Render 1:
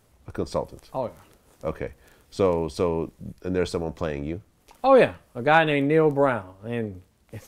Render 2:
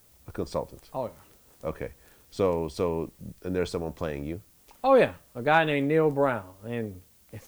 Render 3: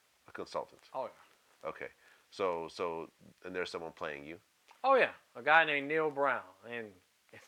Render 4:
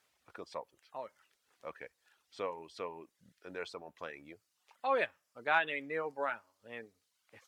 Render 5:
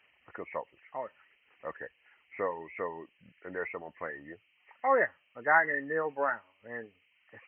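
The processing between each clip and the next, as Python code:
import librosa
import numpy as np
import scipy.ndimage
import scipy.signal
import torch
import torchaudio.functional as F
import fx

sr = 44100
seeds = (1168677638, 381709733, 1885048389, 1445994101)

y1 = fx.dmg_noise_colour(x, sr, seeds[0], colour='blue', level_db=-57.0)
y1 = y1 * librosa.db_to_amplitude(-3.5)
y2 = fx.bandpass_q(y1, sr, hz=1900.0, q=0.78)
y3 = fx.dereverb_blind(y2, sr, rt60_s=0.75)
y3 = y3 * librosa.db_to_amplitude(-4.0)
y4 = fx.freq_compress(y3, sr, knee_hz=1700.0, ratio=4.0)
y4 = y4 * librosa.db_to_amplitude(5.5)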